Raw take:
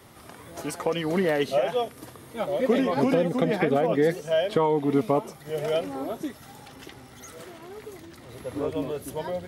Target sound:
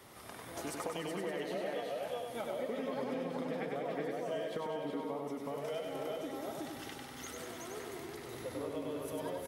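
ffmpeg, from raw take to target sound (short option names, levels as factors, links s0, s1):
-filter_complex "[0:a]asplit=2[s0][s1];[s1]aecho=0:1:372:0.668[s2];[s0][s2]amix=inputs=2:normalize=0,acompressor=threshold=0.0224:ratio=6,lowshelf=f=230:g=-6.5,asplit=2[s3][s4];[s4]aecho=0:1:98|196|294|392|490|588|686:0.631|0.347|0.191|0.105|0.0577|0.0318|0.0175[s5];[s3][s5]amix=inputs=2:normalize=0,volume=0.668"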